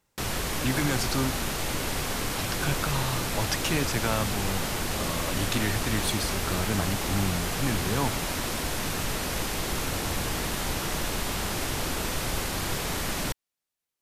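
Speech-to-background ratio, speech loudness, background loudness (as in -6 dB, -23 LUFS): -1.5 dB, -31.0 LUFS, -29.5 LUFS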